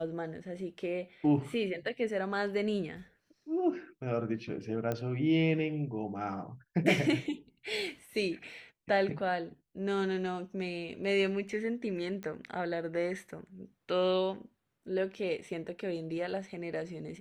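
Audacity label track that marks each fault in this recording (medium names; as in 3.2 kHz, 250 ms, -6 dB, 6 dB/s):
4.920000	4.920000	pop -20 dBFS
12.230000	12.230000	pop -28 dBFS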